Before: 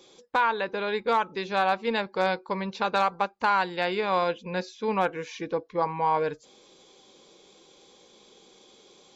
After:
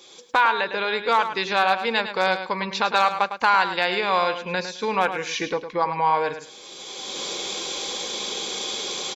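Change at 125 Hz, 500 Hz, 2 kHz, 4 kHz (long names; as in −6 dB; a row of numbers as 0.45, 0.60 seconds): 0.0, +2.0, +7.0, +11.5 decibels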